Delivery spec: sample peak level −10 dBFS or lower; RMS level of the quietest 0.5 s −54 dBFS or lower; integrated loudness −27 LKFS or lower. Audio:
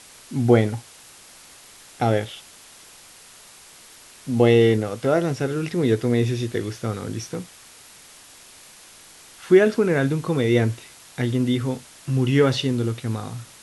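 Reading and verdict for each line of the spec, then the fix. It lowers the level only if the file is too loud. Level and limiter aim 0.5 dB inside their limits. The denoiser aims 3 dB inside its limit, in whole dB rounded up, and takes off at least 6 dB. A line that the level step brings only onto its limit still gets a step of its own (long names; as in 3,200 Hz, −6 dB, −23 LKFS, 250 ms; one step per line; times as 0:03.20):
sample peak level −2.5 dBFS: out of spec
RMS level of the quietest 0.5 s −47 dBFS: out of spec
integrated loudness −21.5 LKFS: out of spec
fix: broadband denoise 6 dB, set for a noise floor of −47 dBFS
level −6 dB
brickwall limiter −10.5 dBFS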